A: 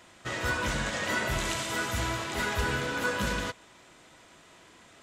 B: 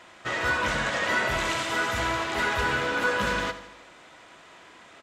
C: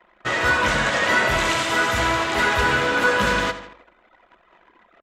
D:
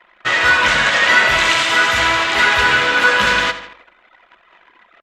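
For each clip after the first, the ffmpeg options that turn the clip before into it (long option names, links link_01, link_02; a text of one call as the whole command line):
ffmpeg -i in.wav -filter_complex "[0:a]asplit=2[link_01][link_02];[link_02]highpass=frequency=720:poles=1,volume=10dB,asoftclip=type=tanh:threshold=-15dB[link_03];[link_01][link_03]amix=inputs=2:normalize=0,lowpass=frequency=2300:poles=1,volume=-6dB,aecho=1:1:79|158|237|316|395|474:0.2|0.116|0.0671|0.0389|0.0226|0.0131,volume=2.5dB" out.wav
ffmpeg -i in.wav -af "anlmdn=0.0398,volume=6.5dB" out.wav
ffmpeg -i in.wav -af "equalizer=frequency=2800:width=0.36:gain=12,volume=-2.5dB" out.wav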